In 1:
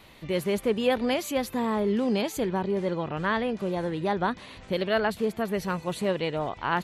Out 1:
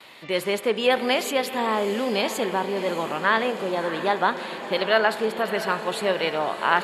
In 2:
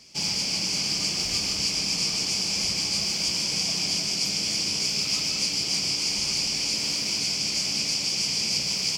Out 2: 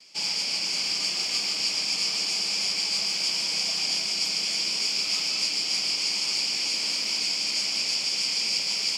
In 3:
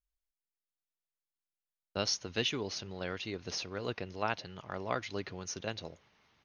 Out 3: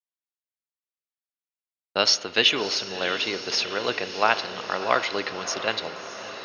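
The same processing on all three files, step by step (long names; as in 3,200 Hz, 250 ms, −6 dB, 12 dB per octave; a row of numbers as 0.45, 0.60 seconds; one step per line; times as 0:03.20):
meter weighting curve A
noise gate with hold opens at −46 dBFS
notch filter 6,000 Hz, Q 9.1
on a send: feedback delay with all-pass diffusion 661 ms, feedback 66%, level −12 dB
on the sum: spring reverb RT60 1.3 s, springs 36 ms, chirp 65 ms, DRR 14 dB
loudness normalisation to −24 LKFS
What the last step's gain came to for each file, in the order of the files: +6.5, −0.5, +13.5 decibels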